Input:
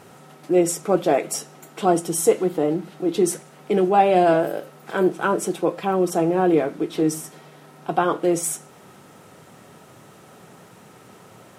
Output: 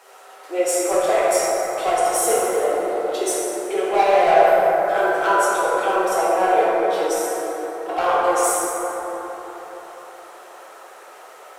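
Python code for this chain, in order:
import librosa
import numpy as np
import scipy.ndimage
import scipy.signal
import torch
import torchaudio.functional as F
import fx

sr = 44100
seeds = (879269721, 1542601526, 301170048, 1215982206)

p1 = scipy.signal.sosfilt(scipy.signal.butter(4, 520.0, 'highpass', fs=sr, output='sos'), x)
p2 = 10.0 ** (-18.5 / 20.0) * (np.abs((p1 / 10.0 ** (-18.5 / 20.0) + 3.0) % 4.0 - 2.0) - 1.0)
p3 = p1 + (p2 * librosa.db_to_amplitude(-3.5))
p4 = fx.rev_plate(p3, sr, seeds[0], rt60_s=4.6, hf_ratio=0.3, predelay_ms=0, drr_db=-8.5)
y = p4 * librosa.db_to_amplitude(-6.0)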